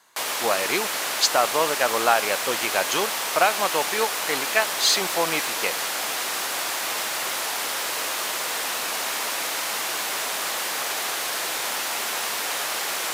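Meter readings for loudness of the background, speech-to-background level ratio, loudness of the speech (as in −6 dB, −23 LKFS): −25.0 LKFS, 1.0 dB, −24.0 LKFS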